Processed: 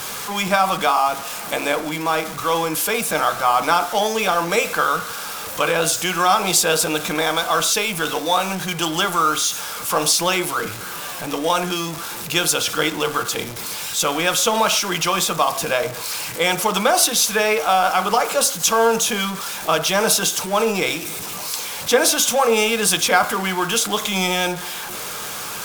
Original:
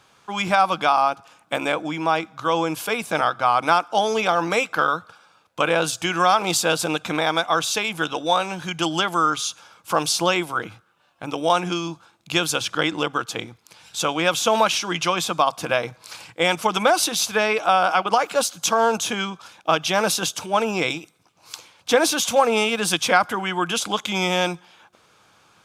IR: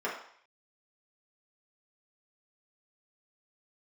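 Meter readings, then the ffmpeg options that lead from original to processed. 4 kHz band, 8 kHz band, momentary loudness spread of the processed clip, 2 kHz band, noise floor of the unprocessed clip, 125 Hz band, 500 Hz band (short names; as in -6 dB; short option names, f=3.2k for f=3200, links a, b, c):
+3.5 dB, +7.5 dB, 9 LU, +2.0 dB, -60 dBFS, +1.5 dB, +1.5 dB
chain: -filter_complex "[0:a]aeval=exprs='val(0)+0.5*0.0501*sgn(val(0))':c=same,aemphasis=mode=production:type=cd,asplit=2[a][b];[1:a]atrim=start_sample=2205,atrim=end_sample=6615,lowshelf=f=450:g=5[c];[b][c]afir=irnorm=-1:irlink=0,volume=-14dB[d];[a][d]amix=inputs=2:normalize=0,volume=-2.5dB"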